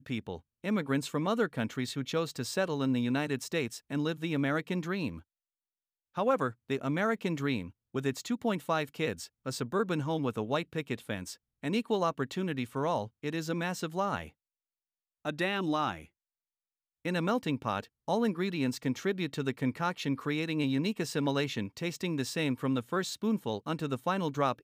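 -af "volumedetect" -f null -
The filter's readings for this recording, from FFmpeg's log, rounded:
mean_volume: -32.8 dB
max_volume: -15.7 dB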